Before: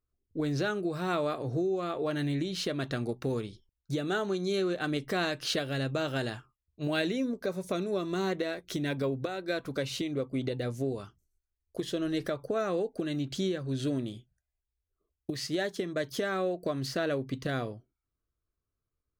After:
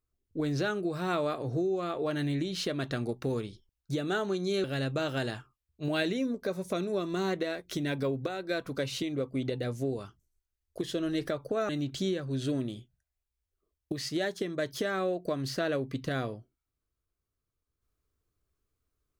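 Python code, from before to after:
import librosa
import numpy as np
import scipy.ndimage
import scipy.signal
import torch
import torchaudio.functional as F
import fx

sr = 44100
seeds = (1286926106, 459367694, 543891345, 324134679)

y = fx.edit(x, sr, fx.cut(start_s=4.64, length_s=0.99),
    fx.cut(start_s=12.68, length_s=0.39), tone=tone)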